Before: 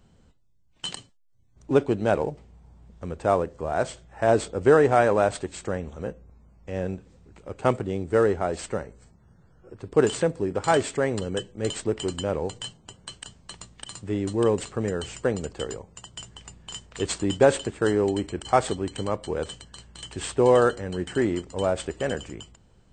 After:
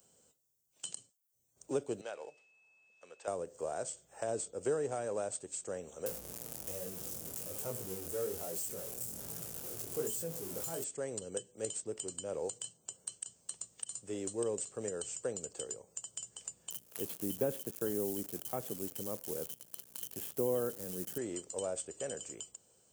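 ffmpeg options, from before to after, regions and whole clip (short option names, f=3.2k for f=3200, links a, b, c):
-filter_complex "[0:a]asettb=1/sr,asplit=3[a][b][c];[a]atrim=end=2.014[d];[b]atrim=start=2.01:end=3.28,asetpts=PTS-STARTPTS,afade=t=in:d=0.004:c=qsin,afade=t=out:st=1.266:d=0.004:c=qsin,aemphasis=mode=reproduction:type=50kf,aeval=exprs='val(0)+0.00126*sin(2*PI*2600*n/s)':c=same,bandpass=f=2.9k:t=q:w=0.72[e];[c]atrim=start=3.276[f];[d][e]acrossfade=d=0.004:c1=hsin:c2=qsin[g];[g][f]acrossfade=d=0.004:c1=qsin:c2=hsin,asettb=1/sr,asplit=3[h][i][j];[h]atrim=end=6.064[k];[i]atrim=start=6.06:end=10.84,asetpts=PTS-STARTPTS,afade=t=in:d=0.004:c=qsin,afade=t=out:st=4.776:d=0.004:c=qsin,aeval=exprs='val(0)+0.5*0.0794*sgn(val(0))':c=same,flanger=delay=17.5:depth=7.6:speed=1.2[l];[j]atrim=start=10.836[m];[k][l]acrossfade=d=0.004:c1=hsin:c2=qsin[n];[n][m]acrossfade=d=0.004:c1=qsin:c2=hsin,asettb=1/sr,asplit=3[o][p][q];[o]atrim=end=16.704[r];[p]atrim=start=16.7:end=21.18,asetpts=PTS-STARTPTS,afade=t=in:d=0.004:c=qsin,afade=t=out:st=4.476:d=0.004:c=qsin,lowpass=f=3.5k:w=0.5412,lowpass=f=3.5k:w=1.3066,equalizer=f=210:t=o:w=1.5:g=7.5,acrusher=bits=7:dc=4:mix=0:aa=0.000001[s];[q]atrim=start=21.176[t];[r][s]acrossfade=d=0.004:c1=hsin:c2=qsin[u];[u][t]acrossfade=d=0.004:c1=qsin:c2=hsin,aderivative,acrossover=split=240[v][w];[w]acompressor=threshold=-48dB:ratio=6[x];[v][x]amix=inputs=2:normalize=0,equalizer=f=125:t=o:w=1:g=4,equalizer=f=500:t=o:w=1:g=8,equalizer=f=1k:t=o:w=1:g=-5,equalizer=f=2k:t=o:w=1:g=-10,equalizer=f=4k:t=o:w=1:g=-10,volume=12dB"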